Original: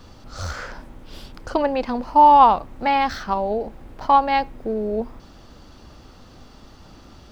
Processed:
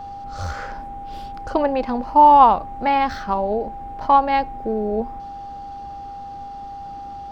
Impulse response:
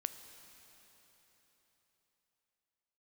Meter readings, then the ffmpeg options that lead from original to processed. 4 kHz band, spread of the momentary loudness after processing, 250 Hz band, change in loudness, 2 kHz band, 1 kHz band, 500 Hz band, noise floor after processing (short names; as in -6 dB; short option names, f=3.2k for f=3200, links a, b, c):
-3.0 dB, 21 LU, +1.5 dB, +0.5 dB, -1.0 dB, +1.0 dB, +1.0 dB, -34 dBFS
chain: -af "highshelf=f=2.6k:g=-7,aeval=exprs='val(0)+0.0224*sin(2*PI*800*n/s)':c=same,volume=1.5dB"